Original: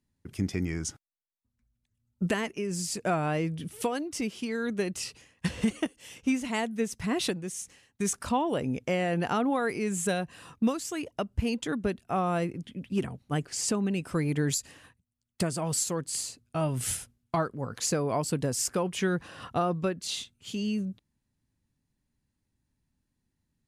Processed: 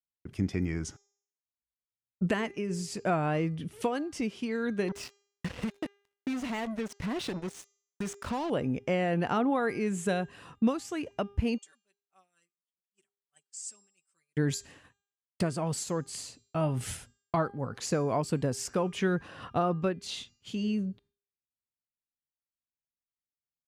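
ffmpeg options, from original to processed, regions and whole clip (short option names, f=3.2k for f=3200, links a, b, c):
-filter_complex "[0:a]asettb=1/sr,asplit=3[a][b][c];[a]atrim=end=4.884[d];[b]atrim=start=4.88:end=8.5,asetpts=PTS-STARTPTS,afade=t=in:d=0.004:c=qsin,afade=t=out:st=3.616:d=0.004:c=qsin,highshelf=f=6.4k:g=-3.5,acompressor=threshold=-29dB:ratio=4:attack=3.2:release=140:knee=1:detection=peak,acrusher=bits=5:mix=0:aa=0.5[e];[c]atrim=start=8.496[f];[d][e]acrossfade=d=0.004:c1=hsin:c2=qsin[g];[g][f]acrossfade=d=0.004:c1=qsin:c2=hsin,asettb=1/sr,asplit=3[h][i][j];[h]atrim=end=11.584[k];[i]atrim=start=11.58:end=14.37,asetpts=PTS-STARTPTS,afade=t=in:d=0.004:c=qsin,afade=t=out:st=2.786:d=0.004:c=qsin,bandpass=f=7.9k:t=q:w=4.6,aecho=1:1:5.2:0.98,atrim=end_sample=123039[l];[j]atrim=start=14.366[m];[k][l]acrossfade=d=0.004:c1=hsin:c2=qsin[n];[n][m]acrossfade=d=0.004:c1=qsin:c2=hsin,lowpass=f=3.1k:p=1,agate=range=-33dB:threshold=-51dB:ratio=3:detection=peak,bandreject=f=402.6:t=h:w=4,bandreject=f=805.2:t=h:w=4,bandreject=f=1.2078k:t=h:w=4,bandreject=f=1.6104k:t=h:w=4,bandreject=f=2.013k:t=h:w=4,bandreject=f=2.4156k:t=h:w=4,bandreject=f=2.8182k:t=h:w=4,bandreject=f=3.2208k:t=h:w=4,bandreject=f=3.6234k:t=h:w=4,bandreject=f=4.026k:t=h:w=4,bandreject=f=4.4286k:t=h:w=4,bandreject=f=4.8312k:t=h:w=4,bandreject=f=5.2338k:t=h:w=4,bandreject=f=5.6364k:t=h:w=4,bandreject=f=6.039k:t=h:w=4,bandreject=f=6.4416k:t=h:w=4,bandreject=f=6.8442k:t=h:w=4,bandreject=f=7.2468k:t=h:w=4,bandreject=f=7.6494k:t=h:w=4"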